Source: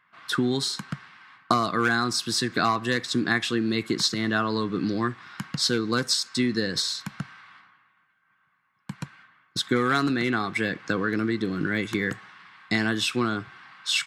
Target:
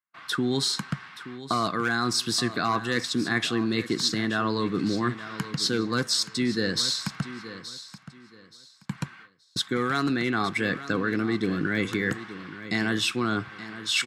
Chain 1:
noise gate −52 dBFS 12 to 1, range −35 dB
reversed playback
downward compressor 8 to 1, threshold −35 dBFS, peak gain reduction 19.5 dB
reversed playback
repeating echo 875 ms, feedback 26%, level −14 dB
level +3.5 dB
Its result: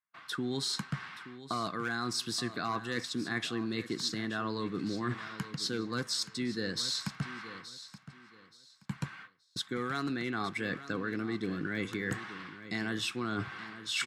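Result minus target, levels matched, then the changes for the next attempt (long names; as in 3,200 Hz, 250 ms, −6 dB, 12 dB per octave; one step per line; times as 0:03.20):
downward compressor: peak gain reduction +9 dB
change: downward compressor 8 to 1, threshold −25 dBFS, peak gain reduction 11 dB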